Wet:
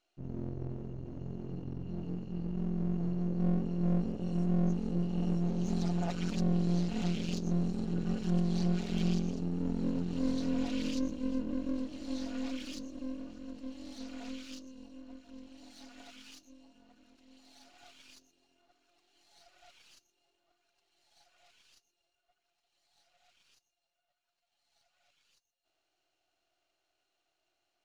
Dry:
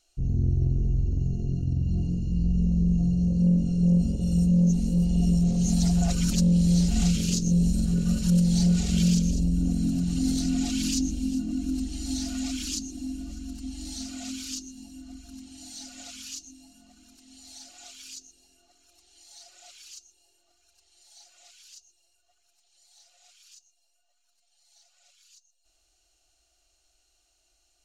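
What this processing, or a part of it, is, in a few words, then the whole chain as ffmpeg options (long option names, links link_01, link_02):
crystal radio: -af "highpass=220,lowpass=2600,aeval=exprs='if(lt(val(0),0),0.251*val(0),val(0))':channel_layout=same"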